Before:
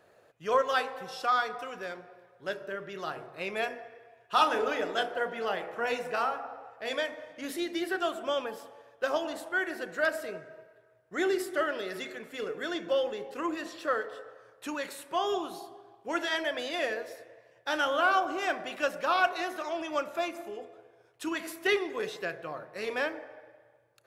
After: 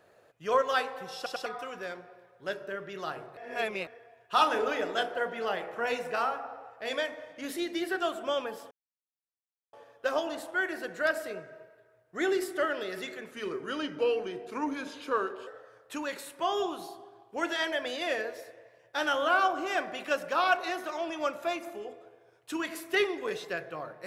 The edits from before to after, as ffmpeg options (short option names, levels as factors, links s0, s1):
-filter_complex "[0:a]asplit=9[s0][s1][s2][s3][s4][s5][s6][s7][s8];[s0]atrim=end=1.262[s9];[s1]atrim=start=1.158:end=1.262[s10];[s2]atrim=start=1.158:end=1.262[s11];[s3]atrim=start=1.458:end=3.372[s12];[s4]atrim=start=3.368:end=3.872,asetpts=PTS-STARTPTS,areverse[s13];[s5]atrim=start=3.868:end=8.71,asetpts=PTS-STARTPTS,afade=t=out:st=4.838:d=0.004:c=hsin,apad=pad_dur=1.02[s14];[s6]atrim=start=8.71:end=12.294,asetpts=PTS-STARTPTS,afade=t=in:d=0.004:c=hsin[s15];[s7]atrim=start=12.29:end=14.19,asetpts=PTS-STARTPTS,asetrate=38808,aresample=44100[s16];[s8]atrim=start=14.186[s17];[s9][s10]acrossfade=d=0.004:c1=hsin:c2=hsin[s18];[s18][s11]acrossfade=d=0.004:c1=hsin:c2=hsin[s19];[s19][s12]acrossfade=d=0.004:c1=hsin:c2=hsin[s20];[s20][s13]acrossfade=d=0.004:c1=hsin:c2=hsin[s21];[s14][s15]concat=n=2:v=0:a=1[s22];[s21][s22]acrossfade=d=0.004:c1=hsin:c2=hsin[s23];[s23][s16]acrossfade=d=0.004:c1=hsin:c2=hsin[s24];[s24][s17]acrossfade=d=0.004:c1=hsin:c2=hsin"